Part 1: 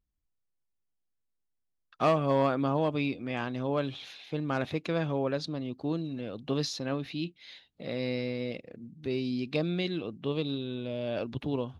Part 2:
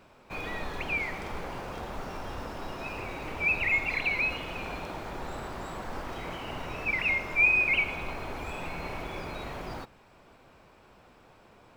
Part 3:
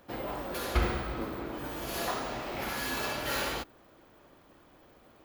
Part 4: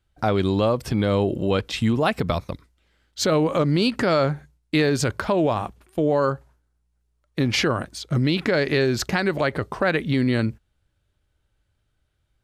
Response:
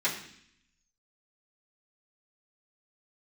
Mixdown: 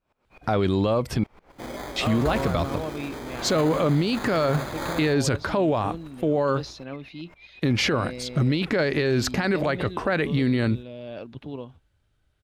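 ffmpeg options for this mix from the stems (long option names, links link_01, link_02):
-filter_complex "[0:a]volume=-4dB[link_01];[1:a]acompressor=threshold=-34dB:ratio=6,aeval=exprs='val(0)*pow(10,-21*if(lt(mod(-7.9*n/s,1),2*abs(-7.9)/1000),1-mod(-7.9*n/s,1)/(2*abs(-7.9)/1000),(mod(-7.9*n/s,1)-2*abs(-7.9)/1000)/(1-2*abs(-7.9)/1000))/20)':channel_layout=same,volume=-9dB[link_02];[2:a]acrusher=samples=16:mix=1:aa=0.000001,adelay=1500,volume=1.5dB[link_03];[3:a]adelay=250,volume=2dB,asplit=3[link_04][link_05][link_06];[link_04]atrim=end=1.24,asetpts=PTS-STARTPTS,afade=type=out:start_time=1.236:duration=0.004:curve=hsin[link_07];[link_05]atrim=start=1.24:end=1.96,asetpts=PTS-STARTPTS,volume=0[link_08];[link_06]atrim=start=1.96,asetpts=PTS-STARTPTS,afade=type=in:duration=0.004:curve=hsin[link_09];[link_07][link_08][link_09]concat=n=3:v=0:a=1[link_10];[link_01][link_02][link_03][link_10]amix=inputs=4:normalize=0,highshelf=frequency=6000:gain=-4,alimiter=limit=-14.5dB:level=0:latency=1:release=13"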